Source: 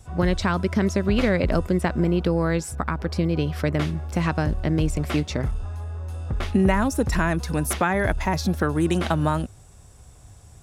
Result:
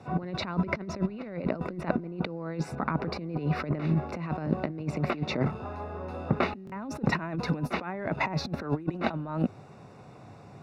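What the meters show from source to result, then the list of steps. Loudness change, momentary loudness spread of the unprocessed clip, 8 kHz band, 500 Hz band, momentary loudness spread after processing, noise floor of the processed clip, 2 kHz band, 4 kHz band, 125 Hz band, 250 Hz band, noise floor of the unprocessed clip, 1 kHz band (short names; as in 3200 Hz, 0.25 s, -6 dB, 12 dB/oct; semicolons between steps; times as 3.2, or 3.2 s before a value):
-8.0 dB, 7 LU, -17.5 dB, -8.5 dB, 9 LU, -50 dBFS, -7.5 dB, -6.5 dB, -7.0 dB, -7.5 dB, -48 dBFS, -6.0 dB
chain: HPF 150 Hz 24 dB/oct; bell 1700 Hz -6.5 dB 0.23 oct; in parallel at -1 dB: limiter -16.5 dBFS, peak gain reduction 8 dB; on the sum: negative-ratio compressor -25 dBFS, ratio -0.5; bit-crush 10-bit; Butterworth band-stop 3200 Hz, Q 4.9; air absorption 330 m; stuck buffer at 6.65, samples 1024, times 2; gain -2.5 dB; Opus 96 kbps 48000 Hz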